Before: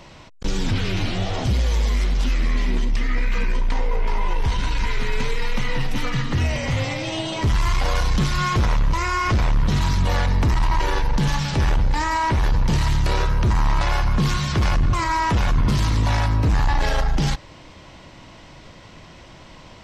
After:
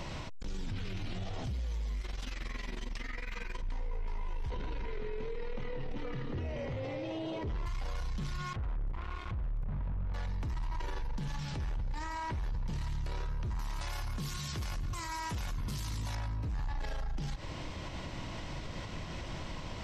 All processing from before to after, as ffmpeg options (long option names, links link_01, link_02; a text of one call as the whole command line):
ffmpeg -i in.wav -filter_complex "[0:a]asettb=1/sr,asplit=3[link_01][link_02][link_03];[link_01]atrim=end=2.014[link_04];[link_02]atrim=start=2.01:end=3.63,asetpts=PTS-STARTPTS,afade=type=in:duration=0.004:curve=qsin,afade=type=out:start_time=1.616:duration=0.004:curve=qsin,lowshelf=frequency=310:gain=-11.5,asplit=2[link_05][link_06];[link_06]adelay=14,volume=-11.5dB[link_07];[link_05][link_07]amix=inputs=2:normalize=0,atrim=end_sample=71442,tremolo=f=22:d=0.857[link_08];[link_03]atrim=start=3.626[link_09];[link_04][link_08]acrossfade=duration=0.004:curve1=hsin:curve2=qsin[link_10];[link_10][link_09]acrossfade=duration=0.004:curve1=qsin:curve2=hsin,asettb=1/sr,asplit=3[link_11][link_12][link_13];[link_11]atrim=end=4.504[link_14];[link_12]atrim=start=4.5:end=7.66,asetpts=PTS-STARTPTS,afade=type=in:duration=0.004:curve=qsin,afade=type=out:start_time=3.156:duration=0.004:curve=qsin,lowpass=4000,equalizer=frequency=440:width_type=o:width=1.3:gain=15[link_15];[link_13]atrim=start=7.656[link_16];[link_14][link_15]acrossfade=duration=0.004:curve1=hsin:curve2=qsin[link_17];[link_17][link_16]acrossfade=duration=0.004:curve1=qsin:curve2=hsin,asettb=1/sr,asplit=3[link_18][link_19][link_20];[link_18]atrim=end=8.534[link_21];[link_19]atrim=start=8.53:end=10.14,asetpts=PTS-STARTPTS,afade=type=in:duration=0.004:curve=qsin,afade=type=out:start_time=1.606:duration=0.004:curve=qsin,lowpass=frequency=1600:width=0.5412,lowpass=frequency=1600:width=1.3066,asubboost=boost=8.5:cutoff=210,acrusher=bits=2:mix=0:aa=0.5[link_22];[link_20]atrim=start=10.136[link_23];[link_21][link_22]acrossfade=duration=0.004:curve1=hsin:curve2=qsin[link_24];[link_24][link_23]acrossfade=duration=0.004:curve1=qsin:curve2=hsin,asettb=1/sr,asplit=3[link_25][link_26][link_27];[link_25]atrim=end=13.594[link_28];[link_26]atrim=start=13.59:end=16.15,asetpts=PTS-STARTPTS,afade=type=in:duration=0.004:curve=qsin,afade=type=out:start_time=2.556:duration=0.004:curve=qsin,highpass=frequency=42:poles=1,aemphasis=mode=production:type=75fm[link_29];[link_27]atrim=start=16.146[link_30];[link_28][link_29]acrossfade=duration=0.004:curve1=hsin:curve2=qsin[link_31];[link_31][link_30]acrossfade=duration=0.004:curve1=qsin:curve2=hsin,lowshelf=frequency=130:gain=7,alimiter=level_in=8.5dB:limit=-24dB:level=0:latency=1:release=114,volume=-8.5dB,volume=1.5dB" out.wav